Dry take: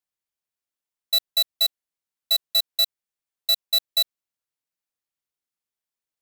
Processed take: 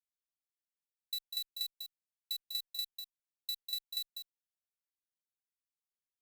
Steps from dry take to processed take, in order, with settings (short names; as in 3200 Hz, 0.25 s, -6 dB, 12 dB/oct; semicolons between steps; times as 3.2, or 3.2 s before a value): passive tone stack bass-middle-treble 6-0-2; compressor, threshold -38 dBFS, peak gain reduction 7 dB; on a send: echo 0.197 s -7 dB; on the sum: gain +2.5 dB